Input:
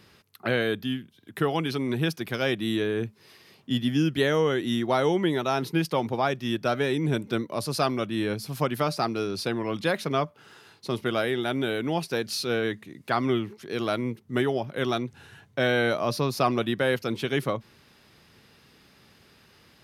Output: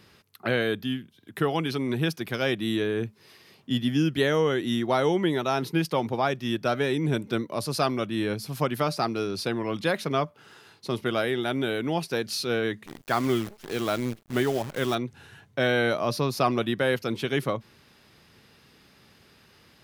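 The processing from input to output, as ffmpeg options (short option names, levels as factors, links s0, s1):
-filter_complex "[0:a]asettb=1/sr,asplit=3[s0][s1][s2];[s0]atrim=end=12.864[s3];[s1]atrim=start=12.86:end=14.95,asetpts=PTS-STARTPTS,afade=t=in:d=0.004:c=qsin,afade=t=out:st=2.086:d=0.004:c=qsin,acrusher=bits=7:dc=4:mix=0:aa=0.000001[s4];[s2]atrim=start=14.946[s5];[s3][s4]acrossfade=d=0.004:c1=hsin:c2=qsin[s6];[s6][s5]acrossfade=d=0.004:c1=qsin:c2=hsin"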